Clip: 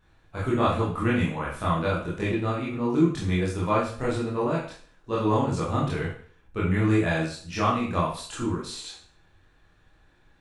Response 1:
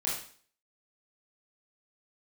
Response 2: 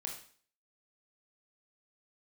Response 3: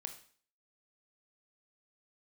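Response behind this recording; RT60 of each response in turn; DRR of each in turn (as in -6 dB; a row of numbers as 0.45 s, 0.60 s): 1; 0.45 s, 0.45 s, 0.45 s; -7.0 dB, -0.5 dB, 5.0 dB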